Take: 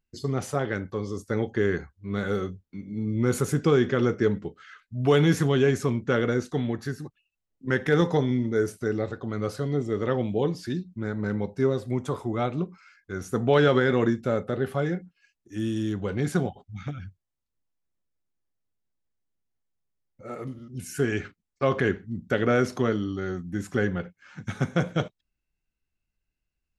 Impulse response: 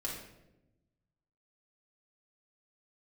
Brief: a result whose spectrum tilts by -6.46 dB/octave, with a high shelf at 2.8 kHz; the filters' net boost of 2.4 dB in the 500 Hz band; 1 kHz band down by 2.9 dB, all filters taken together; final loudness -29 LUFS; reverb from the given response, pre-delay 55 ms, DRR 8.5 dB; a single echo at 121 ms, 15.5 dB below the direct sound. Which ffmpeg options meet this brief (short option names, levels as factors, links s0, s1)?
-filter_complex "[0:a]equalizer=f=500:t=o:g=4,equalizer=f=1000:t=o:g=-4.5,highshelf=f=2800:g=-7,aecho=1:1:121:0.168,asplit=2[s0][s1];[1:a]atrim=start_sample=2205,adelay=55[s2];[s1][s2]afir=irnorm=-1:irlink=0,volume=0.316[s3];[s0][s3]amix=inputs=2:normalize=0,volume=0.596"